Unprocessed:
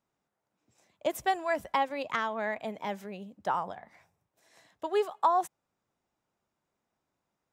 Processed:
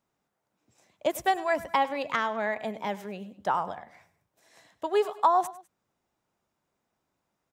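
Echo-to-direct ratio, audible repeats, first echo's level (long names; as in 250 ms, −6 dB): −16.5 dB, 2, −17.0 dB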